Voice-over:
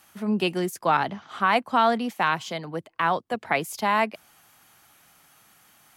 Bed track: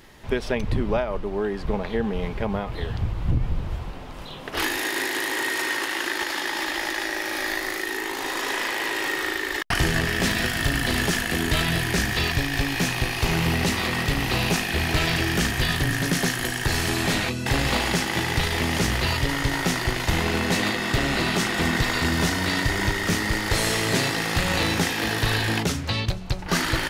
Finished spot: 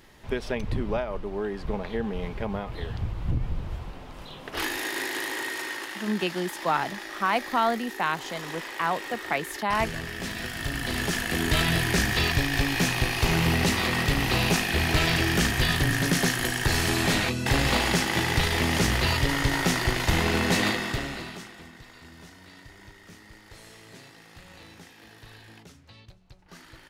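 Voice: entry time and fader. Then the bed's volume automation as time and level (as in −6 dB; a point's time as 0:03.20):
5.80 s, −3.5 dB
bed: 0:05.22 −4.5 dB
0:06.15 −11 dB
0:10.24 −11 dB
0:11.60 −0.5 dB
0:20.70 −0.5 dB
0:21.72 −25.5 dB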